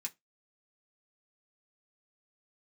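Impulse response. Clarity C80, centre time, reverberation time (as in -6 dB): 34.5 dB, 6 ms, no single decay rate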